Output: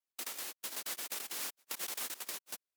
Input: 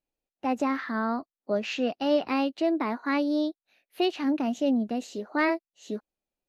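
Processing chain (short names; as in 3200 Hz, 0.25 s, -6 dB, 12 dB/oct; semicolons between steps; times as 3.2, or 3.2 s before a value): compressor 3:1, threshold -39 dBFS, peak gain reduction 15 dB; noise vocoder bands 1; speed mistake 33 rpm record played at 78 rpm; gain -2.5 dB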